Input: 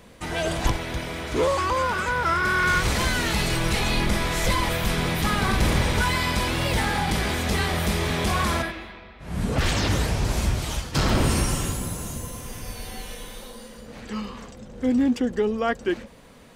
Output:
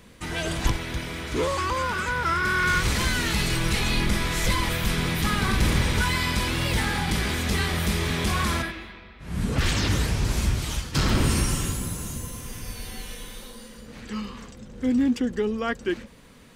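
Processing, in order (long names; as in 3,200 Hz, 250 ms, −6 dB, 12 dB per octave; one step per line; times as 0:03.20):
parametric band 670 Hz −7 dB 1.1 octaves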